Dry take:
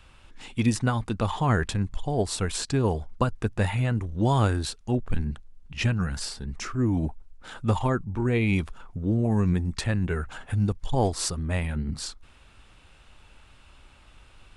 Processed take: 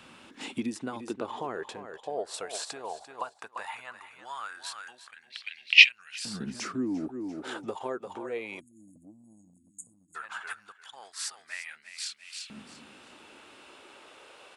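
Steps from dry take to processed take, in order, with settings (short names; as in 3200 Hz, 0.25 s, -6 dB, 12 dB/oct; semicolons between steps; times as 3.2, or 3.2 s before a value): feedback echo 0.344 s, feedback 26%, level -12 dB; 8.6–10.15 spectral delete 340–6500 Hz; compressor 6:1, threshold -37 dBFS, peak gain reduction 18.5 dB; 5.3–5.89 band shelf 3300 Hz +16 dB; LFO high-pass saw up 0.16 Hz 220–2700 Hz; 1.14–2.34 high shelf 4900 Hz -8 dB; gain +4.5 dB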